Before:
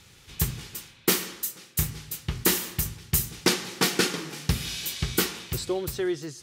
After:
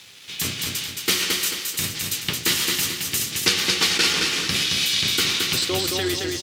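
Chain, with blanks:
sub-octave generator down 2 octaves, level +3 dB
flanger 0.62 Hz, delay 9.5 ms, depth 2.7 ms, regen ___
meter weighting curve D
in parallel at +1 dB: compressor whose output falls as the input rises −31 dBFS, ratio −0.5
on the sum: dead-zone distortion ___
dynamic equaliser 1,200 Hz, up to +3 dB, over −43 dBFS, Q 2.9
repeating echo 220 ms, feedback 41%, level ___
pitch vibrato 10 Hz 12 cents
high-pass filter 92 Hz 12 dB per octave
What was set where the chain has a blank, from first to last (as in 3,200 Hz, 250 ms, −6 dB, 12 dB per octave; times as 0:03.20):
+67%, −46.5 dBFS, −3.5 dB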